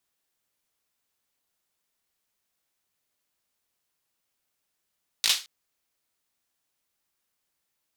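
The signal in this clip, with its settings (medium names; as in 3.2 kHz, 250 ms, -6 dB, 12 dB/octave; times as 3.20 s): hand clap length 0.22 s, apart 18 ms, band 3.8 kHz, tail 0.29 s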